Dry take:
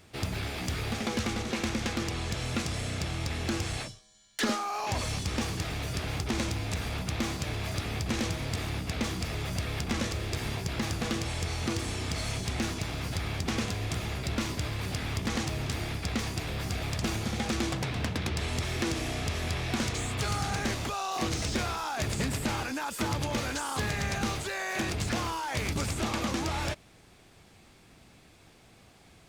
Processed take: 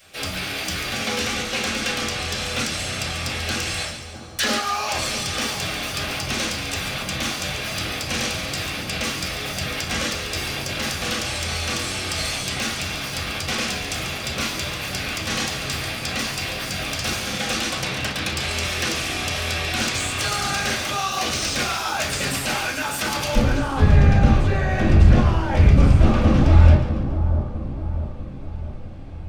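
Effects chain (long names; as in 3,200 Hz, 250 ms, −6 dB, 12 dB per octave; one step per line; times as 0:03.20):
spectral tilt +3.5 dB per octave, from 0:23.34 −2.5 dB per octave
echo with a time of its own for lows and highs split 1,200 Hz, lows 651 ms, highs 141 ms, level −9.5 dB
convolution reverb RT60 0.35 s, pre-delay 4 ms, DRR −8 dB
level −4.5 dB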